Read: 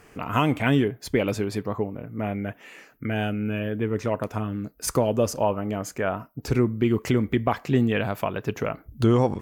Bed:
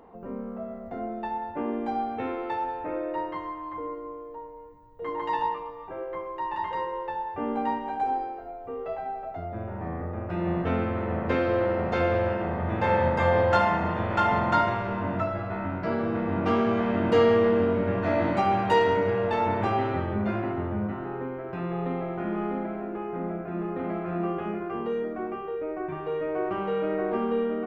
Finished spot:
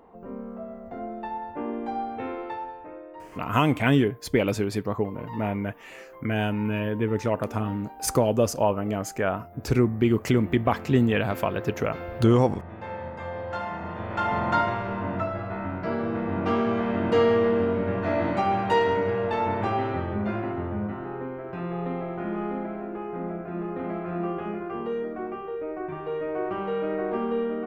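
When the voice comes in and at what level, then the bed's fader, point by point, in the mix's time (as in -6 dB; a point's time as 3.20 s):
3.20 s, +0.5 dB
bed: 2.40 s -1.5 dB
3.09 s -12.5 dB
13.39 s -12.5 dB
14.48 s -0.5 dB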